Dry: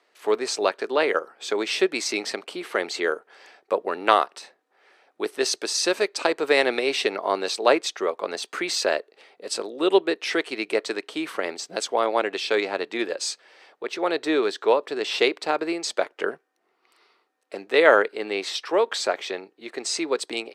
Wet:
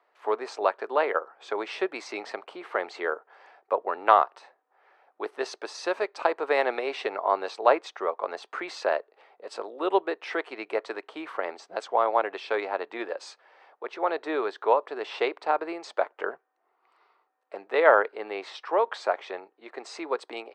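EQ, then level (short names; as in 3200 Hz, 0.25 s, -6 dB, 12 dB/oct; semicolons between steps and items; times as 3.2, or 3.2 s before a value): band-pass 900 Hz, Q 1.4; +2.0 dB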